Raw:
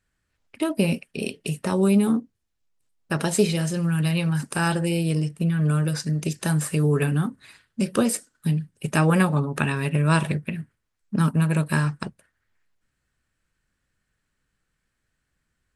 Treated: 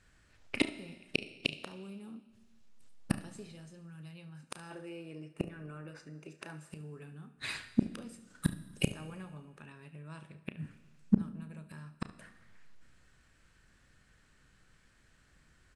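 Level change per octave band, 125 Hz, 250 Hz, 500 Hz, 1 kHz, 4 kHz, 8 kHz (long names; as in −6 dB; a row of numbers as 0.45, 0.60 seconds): −20.0, −14.5, −19.0, −21.5, −8.5, −19.0 decibels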